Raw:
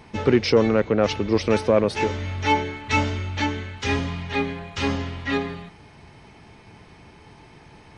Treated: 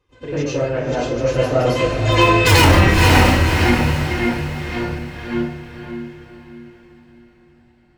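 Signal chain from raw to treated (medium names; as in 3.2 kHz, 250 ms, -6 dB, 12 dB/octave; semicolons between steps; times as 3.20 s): Doppler pass-by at 2.54 s, 53 m/s, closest 2.7 m; gate -58 dBFS, range -7 dB; in parallel at -6.5 dB: bit crusher 5-bit; on the sum: flange 0.99 Hz, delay 2.2 ms, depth 6.6 ms, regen -41%; saturation -36.5 dBFS, distortion 0 dB; echo that smears into a reverb 527 ms, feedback 41%, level -6.5 dB; reverberation RT60 0.40 s, pre-delay 90 ms, DRR -10 dB; loudness maximiser +21.5 dB; trim -1 dB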